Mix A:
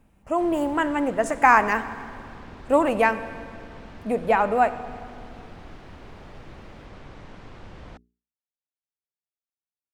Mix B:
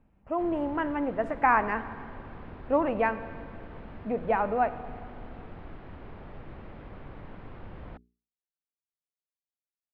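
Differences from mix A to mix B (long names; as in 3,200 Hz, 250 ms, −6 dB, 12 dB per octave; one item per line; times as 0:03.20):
speech −4.5 dB
master: add high-frequency loss of the air 420 metres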